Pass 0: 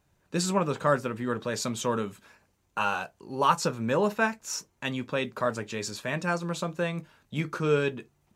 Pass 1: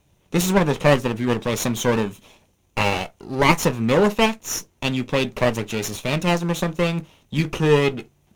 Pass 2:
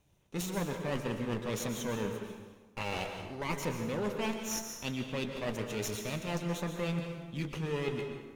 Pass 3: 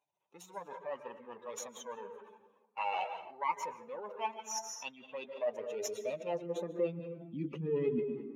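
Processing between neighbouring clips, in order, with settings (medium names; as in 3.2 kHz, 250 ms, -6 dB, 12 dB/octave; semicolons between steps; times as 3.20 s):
comb filter that takes the minimum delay 0.31 ms; trim +8.5 dB
reverse; compression, threshold -24 dBFS, peak gain reduction 14 dB; reverse; plate-style reverb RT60 1.3 s, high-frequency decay 0.65×, pre-delay 110 ms, DRR 4.5 dB; trim -8.5 dB
spectral contrast enhancement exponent 1.9; high-pass sweep 890 Hz -> 220 Hz, 5.06–7.81 s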